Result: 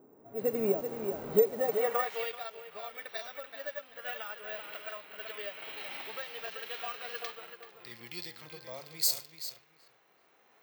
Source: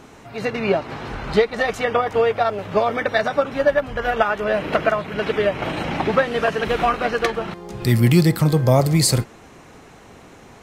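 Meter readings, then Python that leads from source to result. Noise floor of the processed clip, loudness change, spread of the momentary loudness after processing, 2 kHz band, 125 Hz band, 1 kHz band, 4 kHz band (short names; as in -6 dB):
-66 dBFS, -14.5 dB, 15 LU, -17.5 dB, -32.5 dB, -18.5 dB, -11.5 dB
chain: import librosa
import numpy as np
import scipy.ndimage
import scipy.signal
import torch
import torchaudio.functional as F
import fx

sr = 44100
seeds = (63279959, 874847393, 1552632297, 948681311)

p1 = fx.recorder_agc(x, sr, target_db=-6.5, rise_db_per_s=6.4, max_gain_db=30)
p2 = p1 + fx.echo_feedback(p1, sr, ms=384, feedback_pct=26, wet_db=-7.5, dry=0)
p3 = fx.filter_sweep_bandpass(p2, sr, from_hz=340.0, to_hz=5100.0, start_s=1.6, end_s=2.33, q=0.9)
p4 = fx.quant_dither(p3, sr, seeds[0], bits=6, dither='none')
p5 = p3 + (p4 * 10.0 ** (-12.0 / 20.0))
p6 = fx.env_lowpass(p5, sr, base_hz=1300.0, full_db=-17.5)
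p7 = fx.peak_eq(p6, sr, hz=480.0, db=6.0, octaves=1.5)
p8 = np.repeat(scipy.signal.resample_poly(p7, 1, 2), 2)[:len(p7)]
p9 = librosa.effects.preemphasis(p8, coef=0.8, zi=[0.0])
y = fx.hpss(p9, sr, part='percussive', gain_db=-9)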